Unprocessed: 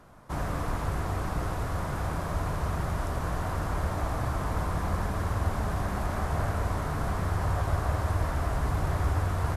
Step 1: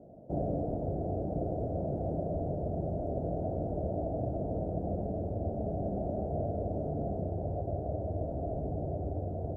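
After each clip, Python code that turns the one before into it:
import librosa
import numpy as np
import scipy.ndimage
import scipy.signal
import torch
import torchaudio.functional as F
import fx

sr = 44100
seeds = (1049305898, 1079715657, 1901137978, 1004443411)

y = scipy.signal.sosfilt(scipy.signal.ellip(4, 1.0, 40, 670.0, 'lowpass', fs=sr, output='sos'), x)
y = fx.rider(y, sr, range_db=4, speed_s=0.5)
y = fx.highpass(y, sr, hz=260.0, slope=6)
y = F.gain(torch.from_numpy(y), 4.0).numpy()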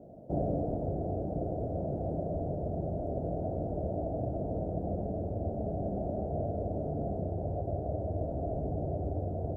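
y = fx.rider(x, sr, range_db=10, speed_s=2.0)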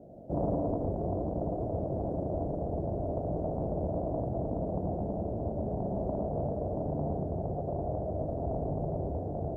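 y = x + 10.0 ** (-3.5 / 20.0) * np.pad(x, (int(113 * sr / 1000.0), 0))[:len(x)]
y = fx.doppler_dist(y, sr, depth_ms=0.33)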